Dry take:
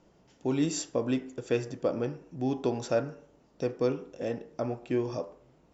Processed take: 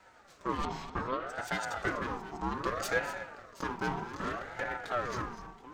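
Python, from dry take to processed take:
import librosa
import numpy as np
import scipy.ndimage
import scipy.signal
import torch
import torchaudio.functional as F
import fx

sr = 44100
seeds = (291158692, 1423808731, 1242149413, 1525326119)

p1 = fx.lower_of_two(x, sr, delay_ms=5.1)
p2 = scipy.signal.sosfilt(scipy.signal.butter(2, 61.0, 'highpass', fs=sr, output='sos'), p1)
p3 = fx.hum_notches(p2, sr, base_hz=60, count=6)
p4 = fx.over_compress(p3, sr, threshold_db=-42.0, ratio=-1.0)
p5 = p3 + (p4 * 10.0 ** (-2.0 / 20.0))
p6 = fx.air_absorb(p5, sr, metres=300.0, at=(0.65, 1.27))
p7 = p6 + fx.echo_multitap(p6, sr, ms=(207, 246, 725), db=(-17.5, -12.5, -18.0), dry=0)
y = fx.ring_lfo(p7, sr, carrier_hz=840.0, swing_pct=35, hz=0.64)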